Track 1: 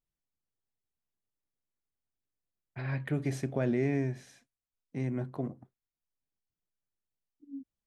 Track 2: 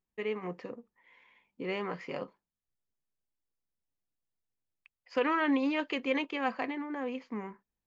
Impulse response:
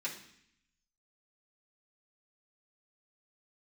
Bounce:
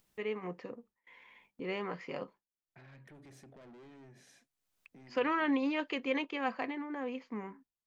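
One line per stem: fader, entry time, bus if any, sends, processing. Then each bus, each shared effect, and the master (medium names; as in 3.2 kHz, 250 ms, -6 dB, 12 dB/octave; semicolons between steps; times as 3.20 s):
-14.5 dB, 0.00 s, no send, high-pass 170 Hz 12 dB/octave; saturation -37 dBFS, distortion -6 dB; peak limiter -42 dBFS, peak gain reduction 5 dB
-2.5 dB, 0.00 s, no send, gate with hold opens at -54 dBFS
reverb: none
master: upward compressor, threshold -50 dBFS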